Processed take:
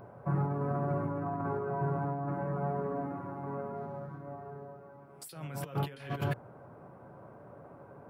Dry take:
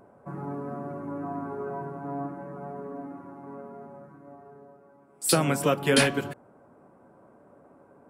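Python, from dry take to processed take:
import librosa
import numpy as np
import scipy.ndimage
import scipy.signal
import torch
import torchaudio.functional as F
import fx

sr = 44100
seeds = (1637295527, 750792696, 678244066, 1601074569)

y = fx.median_filter(x, sr, points=9, at=(3.77, 4.23))
y = fx.over_compress(y, sr, threshold_db=-36.0, ratio=-1.0)
y = fx.graphic_eq_10(y, sr, hz=(125, 250, 8000), db=(9, -7, -12))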